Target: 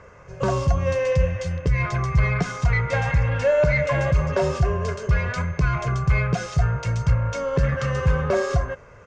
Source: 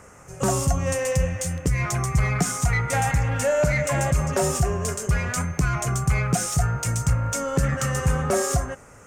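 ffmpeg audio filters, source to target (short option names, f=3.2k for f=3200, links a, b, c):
-af "lowpass=f=4.5k:w=0.5412,lowpass=f=4.5k:w=1.3066,aecho=1:1:1.9:0.51"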